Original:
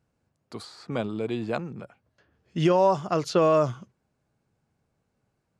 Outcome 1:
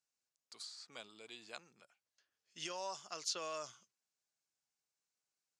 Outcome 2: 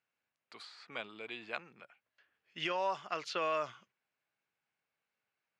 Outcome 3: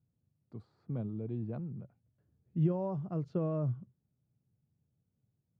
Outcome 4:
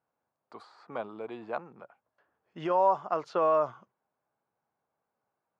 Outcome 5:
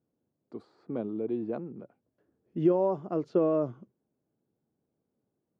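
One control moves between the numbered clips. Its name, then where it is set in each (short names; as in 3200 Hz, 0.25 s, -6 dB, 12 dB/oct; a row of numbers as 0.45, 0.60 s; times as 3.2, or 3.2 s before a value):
band-pass, frequency: 6400, 2400, 120, 940, 320 Hz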